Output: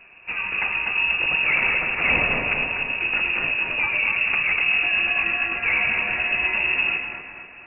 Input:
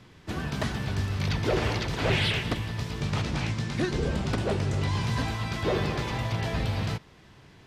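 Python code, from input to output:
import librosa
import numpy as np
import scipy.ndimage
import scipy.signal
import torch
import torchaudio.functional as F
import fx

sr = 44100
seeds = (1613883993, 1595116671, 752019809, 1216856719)

y = fx.freq_invert(x, sr, carrier_hz=2700)
y = fx.echo_split(y, sr, split_hz=2000.0, low_ms=244, high_ms=107, feedback_pct=52, wet_db=-4.5)
y = F.gain(torch.from_numpy(y), 3.5).numpy()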